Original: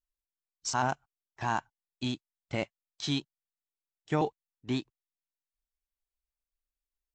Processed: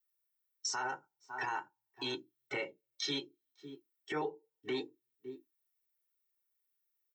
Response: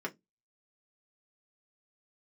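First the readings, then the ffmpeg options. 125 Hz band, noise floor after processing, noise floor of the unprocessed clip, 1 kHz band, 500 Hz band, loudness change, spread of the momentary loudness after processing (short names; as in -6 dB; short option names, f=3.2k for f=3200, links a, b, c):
-17.5 dB, under -85 dBFS, under -85 dBFS, -7.0 dB, -4.0 dB, -5.5 dB, 16 LU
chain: -filter_complex "[0:a]asplit=2[a][b];[b]adelay=553.9,volume=-22dB,highshelf=f=4k:g=-12.5[c];[a][c]amix=inputs=2:normalize=0[d];[1:a]atrim=start_sample=2205[e];[d][e]afir=irnorm=-1:irlink=0,afftdn=nr=13:nf=-49,aemphasis=mode=production:type=riaa,aecho=1:1:2.2:0.76,acompressor=threshold=-48dB:ratio=2,alimiter=level_in=10.5dB:limit=-24dB:level=0:latency=1:release=86,volume=-10.5dB,volume=7.5dB"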